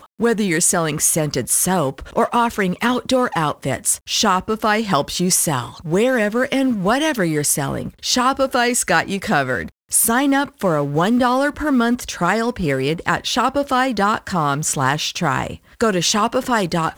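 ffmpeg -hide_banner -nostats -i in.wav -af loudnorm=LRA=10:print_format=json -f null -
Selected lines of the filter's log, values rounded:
"input_i" : "-18.3",
"input_tp" : "-1.9",
"input_lra" : "1.3",
"input_thresh" : "-28.3",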